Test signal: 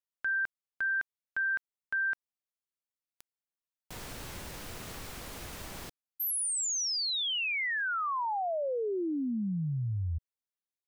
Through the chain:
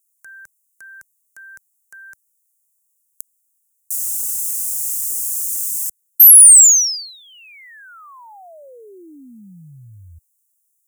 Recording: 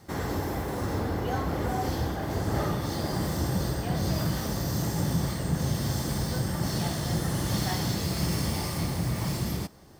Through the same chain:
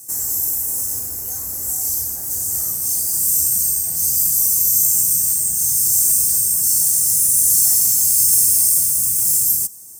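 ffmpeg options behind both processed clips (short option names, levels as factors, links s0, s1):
-filter_complex "[0:a]highshelf=f=5600:t=q:w=1.5:g=11.5,acrossover=split=100|1600|2800[s0][s1][s2][s3];[s1]alimiter=level_in=1.68:limit=0.0631:level=0:latency=1:release=270,volume=0.596[s4];[s0][s4][s2][s3]amix=inputs=4:normalize=0,aexciter=amount=9.6:drive=7.7:freq=5200,volume=0.355"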